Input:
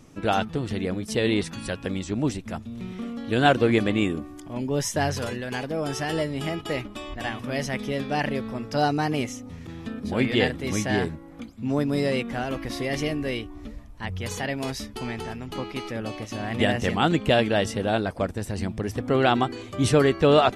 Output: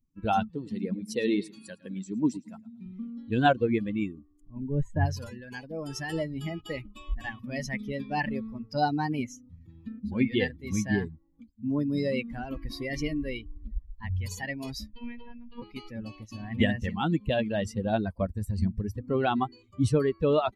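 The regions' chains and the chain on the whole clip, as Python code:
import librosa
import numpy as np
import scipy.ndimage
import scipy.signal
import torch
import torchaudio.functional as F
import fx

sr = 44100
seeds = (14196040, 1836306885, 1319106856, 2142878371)

y = fx.chain(x, sr, fx.highpass(hz=170.0, slope=12),
    fx.notch(hz=1200.0, q=25.0),
    fx.echo_feedback(ms=110, feedback_pct=43, wet_db=-11), at=(0.5, 2.86))
y = fx.chain(y, sr, fx.moving_average(points=8),
    fx.low_shelf(hz=130.0, db=7.0), at=(4.41, 5.06))
y = fx.chain(y, sr, fx.lowpass(hz=4000.0, slope=24),
    fx.robotise(hz=238.0), at=(14.94, 15.62))
y = fx.bin_expand(y, sr, power=2.0)
y = fx.tilt_eq(y, sr, slope=-1.5)
y = fx.rider(y, sr, range_db=5, speed_s=0.5)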